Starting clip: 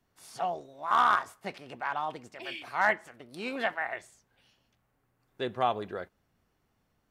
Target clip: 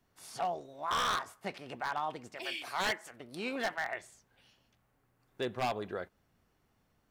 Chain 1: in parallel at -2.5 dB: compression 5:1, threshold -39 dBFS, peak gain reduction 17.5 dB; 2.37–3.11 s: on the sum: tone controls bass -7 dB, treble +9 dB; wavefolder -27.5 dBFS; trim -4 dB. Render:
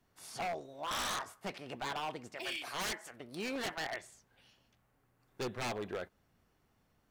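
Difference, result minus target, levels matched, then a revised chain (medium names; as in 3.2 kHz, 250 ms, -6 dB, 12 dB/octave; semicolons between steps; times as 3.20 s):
wavefolder: distortion +7 dB
in parallel at -2.5 dB: compression 5:1, threshold -39 dBFS, peak gain reduction 17.5 dB; 2.37–3.11 s: on the sum: tone controls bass -7 dB, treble +9 dB; wavefolder -21 dBFS; trim -4 dB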